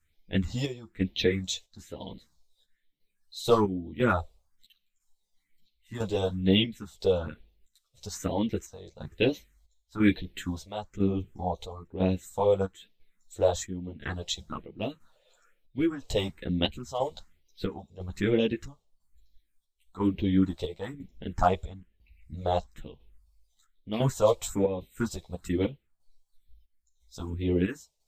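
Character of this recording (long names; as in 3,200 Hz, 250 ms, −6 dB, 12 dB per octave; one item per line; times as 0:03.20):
phaser sweep stages 4, 1.1 Hz, lowest notch 250–1,400 Hz
chopped level 1 Hz, depth 65%, duty 65%
a shimmering, thickened sound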